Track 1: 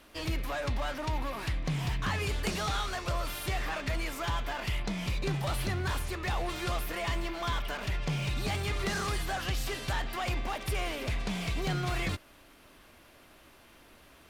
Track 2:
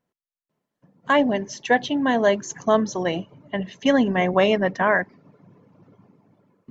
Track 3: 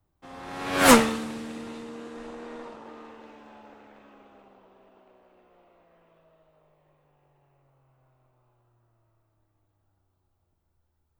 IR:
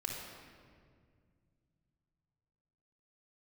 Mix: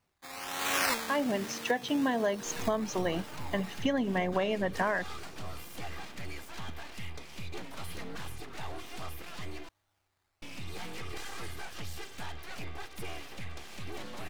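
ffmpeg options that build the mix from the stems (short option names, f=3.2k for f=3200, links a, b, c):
-filter_complex "[0:a]aecho=1:1:2.5:0.87,aeval=exprs='abs(val(0))':c=same,adelay=2300,volume=-9.5dB,asplit=3[a][b][c];[a]atrim=end=9.69,asetpts=PTS-STARTPTS,afade=t=out:st=9.686:d=0.004:c=hsin[d];[b]atrim=start=9.69:end=10.42,asetpts=PTS-STARTPTS,volume=0[e];[c]atrim=start=10.42,asetpts=PTS-STARTPTS,afade=t=in:d=0.004:c=hsin[f];[d][e][f]concat=n=3:v=0:a=1[g];[1:a]volume=-3.5dB[h];[2:a]acrusher=samples=12:mix=1:aa=0.000001:lfo=1:lforange=7.2:lforate=1.2,tiltshelf=f=680:g=-8,volume=-2.5dB[i];[g][h][i]amix=inputs=3:normalize=0,acompressor=threshold=-25dB:ratio=16"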